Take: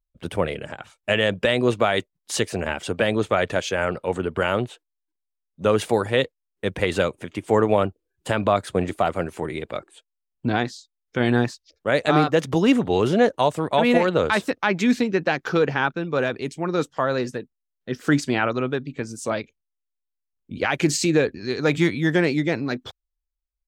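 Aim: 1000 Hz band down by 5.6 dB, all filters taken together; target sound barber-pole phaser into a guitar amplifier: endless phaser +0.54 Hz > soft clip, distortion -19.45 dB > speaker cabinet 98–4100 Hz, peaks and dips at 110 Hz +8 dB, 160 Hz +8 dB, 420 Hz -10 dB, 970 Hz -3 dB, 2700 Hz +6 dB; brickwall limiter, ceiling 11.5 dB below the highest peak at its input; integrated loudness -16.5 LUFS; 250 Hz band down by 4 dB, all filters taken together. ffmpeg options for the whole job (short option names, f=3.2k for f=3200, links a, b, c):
-filter_complex "[0:a]equalizer=f=250:t=o:g=-6.5,equalizer=f=1k:t=o:g=-6,alimiter=limit=-18.5dB:level=0:latency=1,asplit=2[a][b];[b]afreqshift=0.54[c];[a][c]amix=inputs=2:normalize=1,asoftclip=threshold=-23dB,highpass=98,equalizer=f=110:t=q:w=4:g=8,equalizer=f=160:t=q:w=4:g=8,equalizer=f=420:t=q:w=4:g=-10,equalizer=f=970:t=q:w=4:g=-3,equalizer=f=2.7k:t=q:w=4:g=6,lowpass=f=4.1k:w=0.5412,lowpass=f=4.1k:w=1.3066,volume=18dB"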